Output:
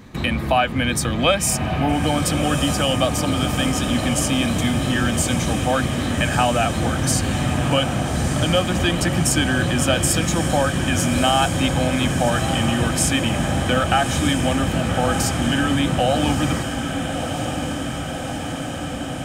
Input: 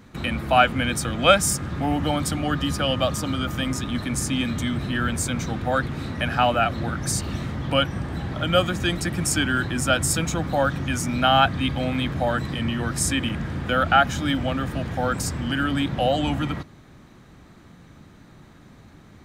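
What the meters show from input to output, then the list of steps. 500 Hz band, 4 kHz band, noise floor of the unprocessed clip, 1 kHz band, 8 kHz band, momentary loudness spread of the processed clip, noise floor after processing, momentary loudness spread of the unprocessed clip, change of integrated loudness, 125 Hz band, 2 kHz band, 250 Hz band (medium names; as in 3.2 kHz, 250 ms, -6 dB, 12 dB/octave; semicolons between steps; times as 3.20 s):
+3.0 dB, +4.0 dB, -49 dBFS, +1.5 dB, +5.0 dB, 7 LU, -27 dBFS, 9 LU, +3.0 dB, +5.0 dB, +2.5 dB, +5.0 dB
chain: band-stop 1.4 kHz, Q 7.7; compression 2.5:1, threshold -23 dBFS, peak gain reduction 8.5 dB; echo that smears into a reverb 1243 ms, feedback 75%, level -7.5 dB; trim +6 dB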